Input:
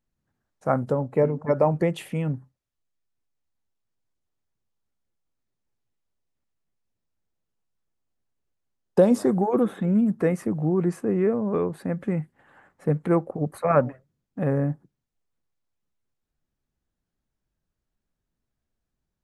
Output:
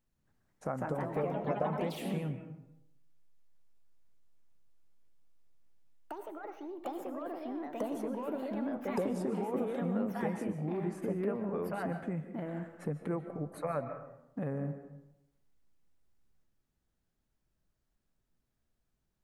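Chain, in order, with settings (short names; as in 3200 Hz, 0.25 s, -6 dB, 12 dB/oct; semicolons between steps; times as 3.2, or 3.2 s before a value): compressor 3:1, threshold -38 dBFS, peak gain reduction 19 dB; reverb RT60 0.85 s, pre-delay 0.105 s, DRR 9 dB; echoes that change speed 0.257 s, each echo +3 st, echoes 3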